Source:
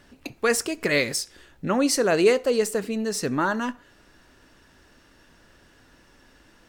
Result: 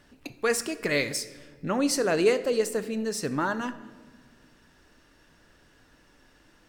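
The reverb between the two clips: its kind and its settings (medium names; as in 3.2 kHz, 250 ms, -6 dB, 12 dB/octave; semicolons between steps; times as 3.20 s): simulated room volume 1400 m³, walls mixed, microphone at 0.43 m; trim -4 dB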